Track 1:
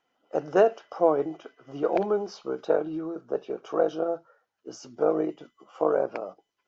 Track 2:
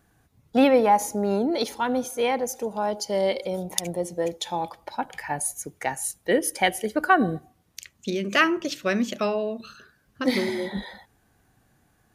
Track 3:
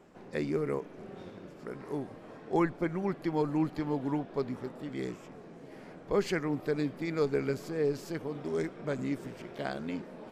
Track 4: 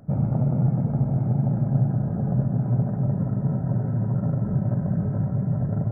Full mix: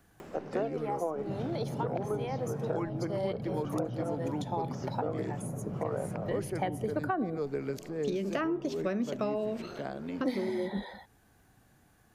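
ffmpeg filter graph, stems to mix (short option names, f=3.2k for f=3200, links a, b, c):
-filter_complex "[0:a]equalizer=f=1.7k:w=0.36:g=5,volume=-8dB,asplit=2[a][b];[1:a]volume=0dB[c];[2:a]acompressor=mode=upward:threshold=-34dB:ratio=2.5,adelay=200,volume=-1.5dB[d];[3:a]adelay=1200,volume=-9.5dB[e];[b]apad=whole_len=535484[f];[c][f]sidechaincompress=threshold=-40dB:ratio=8:attack=9.8:release=537[g];[a][g][d][e]amix=inputs=4:normalize=0,acrossover=split=220|1100[h][i][j];[h]acompressor=threshold=-40dB:ratio=4[k];[i]acompressor=threshold=-31dB:ratio=4[l];[j]acompressor=threshold=-49dB:ratio=4[m];[k][l][m]amix=inputs=3:normalize=0"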